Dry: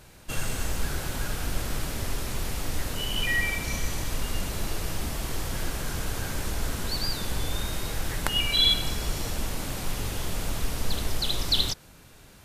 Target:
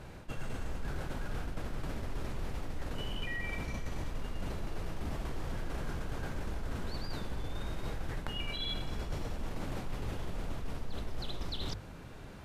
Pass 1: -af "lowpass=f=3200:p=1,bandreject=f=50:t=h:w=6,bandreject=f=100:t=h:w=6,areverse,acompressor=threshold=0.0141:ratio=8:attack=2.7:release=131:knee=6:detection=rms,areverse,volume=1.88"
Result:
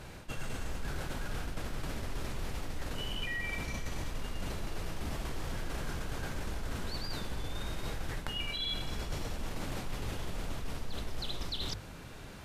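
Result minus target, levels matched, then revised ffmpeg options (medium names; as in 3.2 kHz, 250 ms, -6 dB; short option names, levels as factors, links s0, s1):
4 kHz band +2.5 dB
-af "lowpass=f=1300:p=1,bandreject=f=50:t=h:w=6,bandreject=f=100:t=h:w=6,areverse,acompressor=threshold=0.0141:ratio=8:attack=2.7:release=131:knee=6:detection=rms,areverse,volume=1.88"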